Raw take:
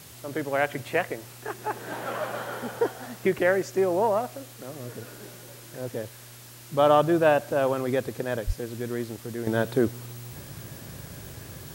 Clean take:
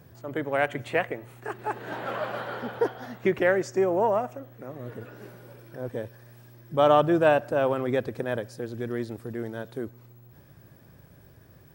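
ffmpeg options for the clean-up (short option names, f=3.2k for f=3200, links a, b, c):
-filter_complex "[0:a]asplit=3[a][b][c];[a]afade=t=out:st=8.46:d=0.02[d];[b]highpass=f=140:w=0.5412,highpass=f=140:w=1.3066,afade=t=in:st=8.46:d=0.02,afade=t=out:st=8.58:d=0.02[e];[c]afade=t=in:st=8.58:d=0.02[f];[d][e][f]amix=inputs=3:normalize=0,afwtdn=0.0045,asetnsamples=n=441:p=0,asendcmd='9.47 volume volume -11dB',volume=0dB"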